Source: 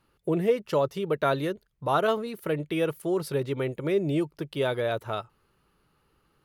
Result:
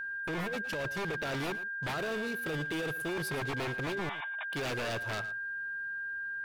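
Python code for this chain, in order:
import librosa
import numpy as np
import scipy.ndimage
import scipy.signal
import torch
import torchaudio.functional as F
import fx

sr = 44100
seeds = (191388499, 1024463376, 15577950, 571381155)

p1 = fx.dynamic_eq(x, sr, hz=980.0, q=0.92, threshold_db=-35.0, ratio=4.0, max_db=-4)
p2 = fx.over_compress(p1, sr, threshold_db=-27.0, ratio=-0.5)
p3 = fx.clip_hard(p2, sr, threshold_db=-28.0, at=(1.95, 3.09))
p4 = p3 + 10.0 ** (-33.0 / 20.0) * np.sin(2.0 * np.pi * 1600.0 * np.arange(len(p3)) / sr)
p5 = 10.0 ** (-27.0 / 20.0) * (np.abs((p4 / 10.0 ** (-27.0 / 20.0) + 3.0) % 4.0 - 2.0) - 1.0)
p6 = fx.brickwall_bandpass(p5, sr, low_hz=600.0, high_hz=3800.0, at=(4.09, 4.53))
p7 = p6 + fx.echo_single(p6, sr, ms=113, db=-15.5, dry=0)
y = p7 * librosa.db_to_amplitude(-2.5)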